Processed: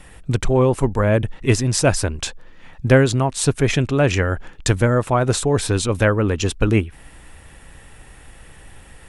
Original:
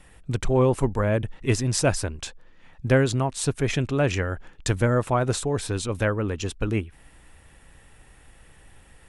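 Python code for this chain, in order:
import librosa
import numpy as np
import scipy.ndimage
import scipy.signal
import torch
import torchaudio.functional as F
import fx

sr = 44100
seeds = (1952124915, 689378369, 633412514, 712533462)

y = fx.rider(x, sr, range_db=3, speed_s=0.5)
y = y * 10.0 ** (6.0 / 20.0)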